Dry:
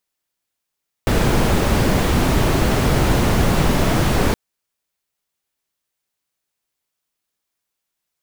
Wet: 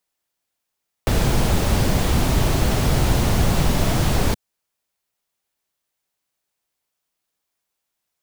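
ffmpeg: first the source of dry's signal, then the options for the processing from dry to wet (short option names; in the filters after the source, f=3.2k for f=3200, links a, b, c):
-f lavfi -i "anoisesrc=c=brown:a=0.785:d=3.27:r=44100:seed=1"
-filter_complex "[0:a]equalizer=f=730:t=o:w=0.96:g=3,acrossover=split=170|3000[a][b][c];[b]acompressor=threshold=-26dB:ratio=2.5[d];[a][d][c]amix=inputs=3:normalize=0"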